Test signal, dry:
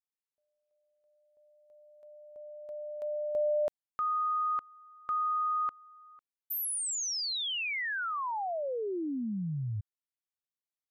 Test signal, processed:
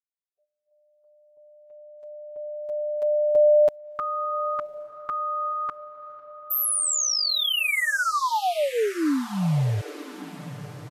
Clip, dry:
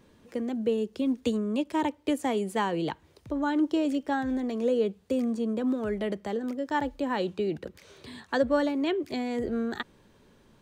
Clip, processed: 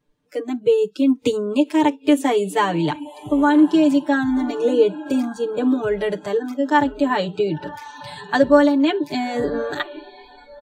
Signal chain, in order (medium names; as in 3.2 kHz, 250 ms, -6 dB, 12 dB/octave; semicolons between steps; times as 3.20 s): comb 6.8 ms, depth 98%; echo that smears into a reverb 1057 ms, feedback 42%, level -14.5 dB; spectral noise reduction 23 dB; trim +6.5 dB